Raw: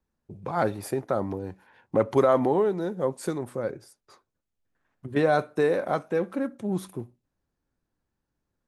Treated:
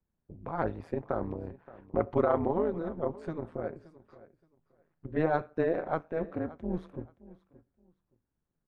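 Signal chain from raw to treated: low-pass 2.2 kHz 12 dB/octave; bass shelf 130 Hz +5 dB; AM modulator 160 Hz, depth 80%; feedback delay 573 ms, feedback 21%, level -19 dB; trim -2.5 dB

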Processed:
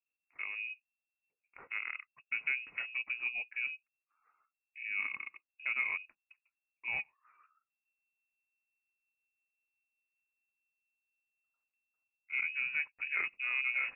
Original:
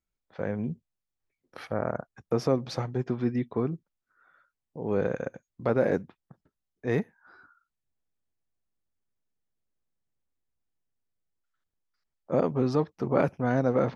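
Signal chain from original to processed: rotary cabinet horn 6.7 Hz, later 0.8 Hz, at 9.07 s; frequency inversion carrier 2.7 kHz; trim -8 dB

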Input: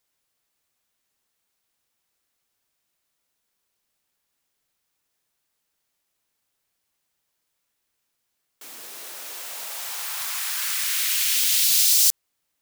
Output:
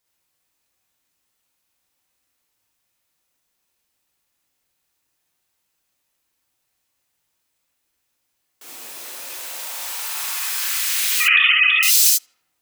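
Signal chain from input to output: 11.20–11.83 s: formants replaced by sine waves; tape echo 83 ms, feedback 76%, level -23.5 dB, low-pass 2 kHz; gated-style reverb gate 90 ms rising, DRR -2.5 dB; trim -1 dB

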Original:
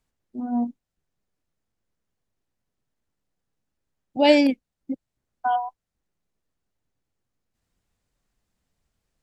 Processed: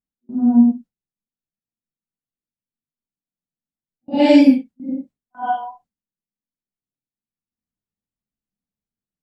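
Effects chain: phase randomisation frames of 200 ms; gate with hold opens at -42 dBFS; peaking EQ 210 Hz +13 dB 1.4 oct

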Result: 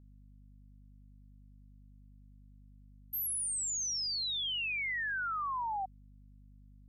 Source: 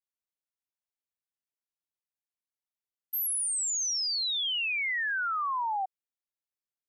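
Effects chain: hum 50 Hz, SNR 18 dB; trim -5 dB

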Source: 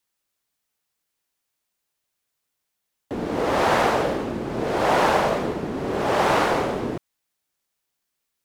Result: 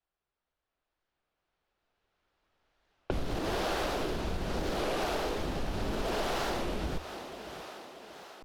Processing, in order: recorder AGC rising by 5.9 dB/s; hum notches 50/100/150/200/250 Hz; frequency shift -170 Hz; in parallel at -11.5 dB: wavefolder -19.5 dBFS; on the sum: ten-band graphic EQ 125 Hz -10 dB, 250 Hz -9 dB, 500 Hz -6 dB, 1 kHz -8 dB, 2 kHz -8 dB, 8 kHz -6 dB; level-controlled noise filter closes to 1.4 kHz, open at -26.5 dBFS; peaking EQ 76 Hz -5 dB 2.7 oct; thinning echo 633 ms, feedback 59%, high-pass 190 Hz, level -16.5 dB; compression, threshold -35 dBFS, peak gain reduction 11 dB; warped record 33 1/3 rpm, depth 160 cents; trim +5.5 dB

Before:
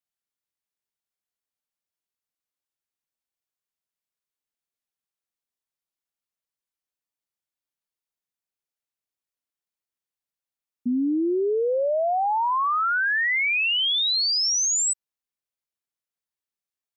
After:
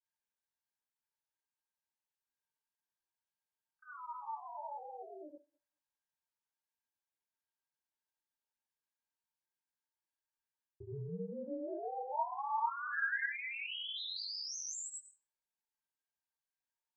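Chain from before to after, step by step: painted sound fall, 3.83–5.38 s, 430–1400 Hz -44 dBFS; ring modulator 140 Hz; reverse; compression, threshold -38 dBFS, peak gain reduction 13.5 dB; reverse; small resonant body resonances 910/1600 Hz, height 15 dB, ringing for 45 ms; on a send: thinning echo 77 ms, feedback 33%, high-pass 200 Hz, level -17 dB; on the sum: granulator, grains 20 per s, pitch spread up and down by 0 st; detune thickener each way 12 cents; trim +1 dB

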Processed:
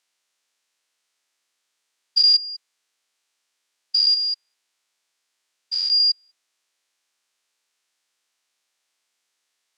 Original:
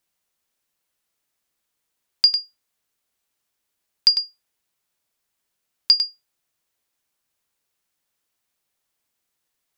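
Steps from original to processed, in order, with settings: spectrogram pixelated in time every 200 ms; band-pass 280–7400 Hz; tilt shelf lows -4.5 dB, about 1.1 kHz; trim +4.5 dB

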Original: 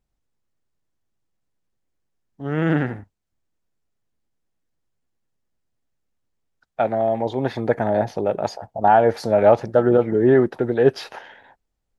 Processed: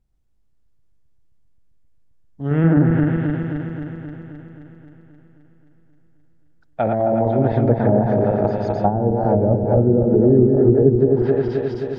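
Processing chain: backward echo that repeats 132 ms, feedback 80%, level -4 dB; low-pass that closes with the level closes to 370 Hz, closed at -10 dBFS; bass shelf 270 Hz +12 dB; trim -2.5 dB

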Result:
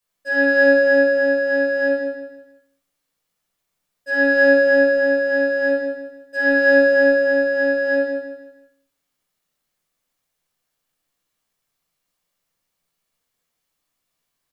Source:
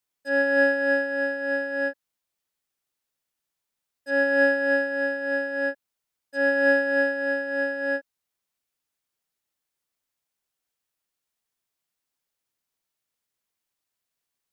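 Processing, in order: hum notches 50/100/150 Hz; on a send: feedback delay 157 ms, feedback 35%, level -7.5 dB; on the sum: simulated room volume 830 m³, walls furnished, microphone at 5.7 m

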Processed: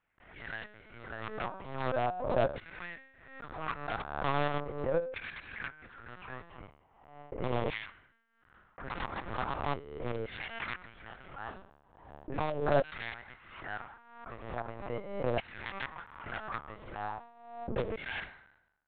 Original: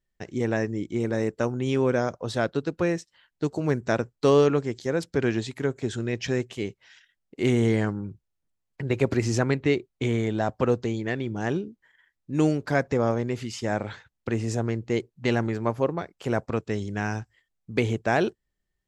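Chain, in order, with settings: median filter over 25 samples; level-controlled noise filter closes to 840 Hz, open at -19 dBFS; hum notches 50/100/150/200/250 Hz; dynamic bell 2.9 kHz, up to -8 dB, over -50 dBFS, Q 0.96; feedback comb 73 Hz, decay 0.82 s, harmonics all, mix 70%; in parallel at -6 dB: integer overflow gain 24 dB; on the sum: LFO high-pass saw down 0.39 Hz 570–2200 Hz; LPC vocoder at 8 kHz pitch kept; swell ahead of each attack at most 64 dB/s

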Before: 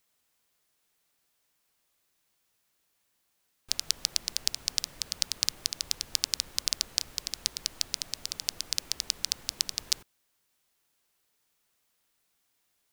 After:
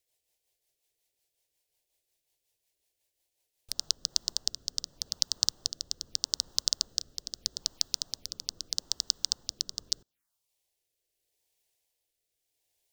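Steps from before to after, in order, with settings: transient shaper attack +4 dB, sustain -4 dB; touch-sensitive phaser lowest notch 210 Hz, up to 2.3 kHz, full sweep at -35.5 dBFS; rotary cabinet horn 5.5 Hz, later 0.8 Hz, at 3.43 s; trim -1 dB

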